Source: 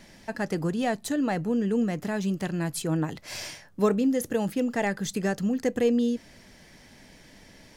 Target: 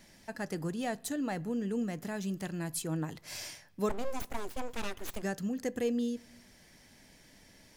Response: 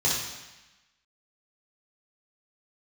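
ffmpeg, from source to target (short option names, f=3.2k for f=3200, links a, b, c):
-filter_complex "[0:a]highshelf=f=6.8k:g=8.5,asettb=1/sr,asplit=3[a][b][c];[a]atrim=end=3.894[d];[b]atrim=start=3.89:end=5.23,asetpts=PTS-STARTPTS,afade=t=in:d=0.004:c=qsin,afade=t=out:st=1.336:d=0.004:c=qsin,aeval=exprs='abs(val(0))':c=same[e];[c]atrim=start=5.226[f];[d][e]acrossfade=d=0.004:c1=hsin:c2=qsin[g];[g][f]acrossfade=d=0.004:c1=qsin:c2=hsin,asplit=2[h][i];[1:a]atrim=start_sample=2205,lowpass=3.2k[j];[i][j]afir=irnorm=-1:irlink=0,volume=-32.5dB[k];[h][k]amix=inputs=2:normalize=0,volume=-8dB"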